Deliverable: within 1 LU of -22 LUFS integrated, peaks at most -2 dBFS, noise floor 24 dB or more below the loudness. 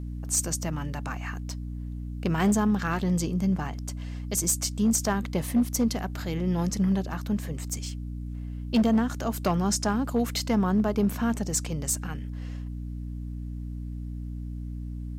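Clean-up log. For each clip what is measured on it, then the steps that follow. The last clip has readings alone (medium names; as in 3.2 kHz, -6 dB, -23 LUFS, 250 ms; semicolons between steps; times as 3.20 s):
clipped samples 0.5%; clipping level -17.0 dBFS; hum 60 Hz; highest harmonic 300 Hz; hum level -32 dBFS; loudness -28.5 LUFS; peak level -17.0 dBFS; loudness target -22.0 LUFS
-> clip repair -17 dBFS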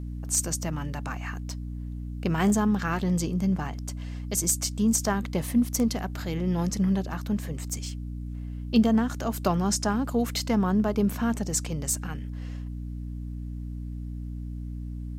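clipped samples 0.0%; hum 60 Hz; highest harmonic 300 Hz; hum level -32 dBFS
-> de-hum 60 Hz, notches 5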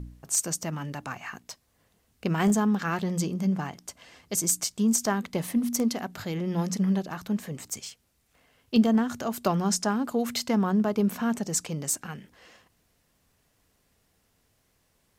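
hum not found; loudness -27.5 LUFS; peak level -10.5 dBFS; loudness target -22.0 LUFS
-> trim +5.5 dB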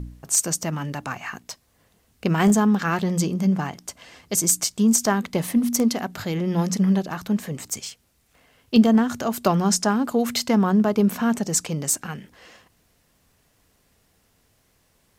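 loudness -22.0 LUFS; peak level -5.0 dBFS; noise floor -64 dBFS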